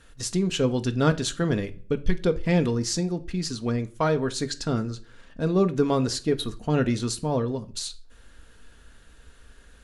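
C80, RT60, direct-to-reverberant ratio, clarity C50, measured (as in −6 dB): 24.0 dB, 0.45 s, 7.5 dB, 18.0 dB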